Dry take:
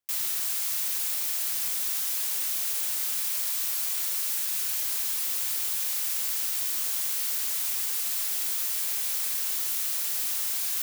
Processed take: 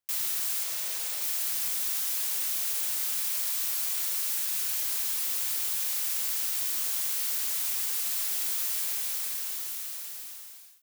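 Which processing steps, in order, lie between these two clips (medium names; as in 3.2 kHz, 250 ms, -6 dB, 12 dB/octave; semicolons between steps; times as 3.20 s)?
fade out at the end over 2.09 s; 0.63–1.22 s: ten-band graphic EQ 250 Hz -9 dB, 500 Hz +8 dB, 16 kHz -5 dB; trim -1 dB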